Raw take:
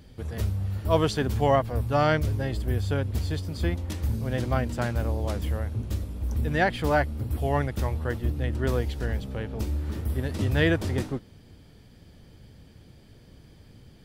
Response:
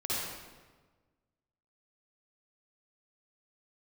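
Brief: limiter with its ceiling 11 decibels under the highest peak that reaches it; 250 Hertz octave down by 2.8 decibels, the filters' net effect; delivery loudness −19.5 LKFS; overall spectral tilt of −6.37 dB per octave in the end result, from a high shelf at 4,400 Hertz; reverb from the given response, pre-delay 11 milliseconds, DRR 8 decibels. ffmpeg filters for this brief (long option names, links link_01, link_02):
-filter_complex "[0:a]equalizer=frequency=250:width_type=o:gain=-4,highshelf=frequency=4400:gain=-3.5,alimiter=limit=-20.5dB:level=0:latency=1,asplit=2[link_01][link_02];[1:a]atrim=start_sample=2205,adelay=11[link_03];[link_02][link_03]afir=irnorm=-1:irlink=0,volume=-14.5dB[link_04];[link_01][link_04]amix=inputs=2:normalize=0,volume=10.5dB"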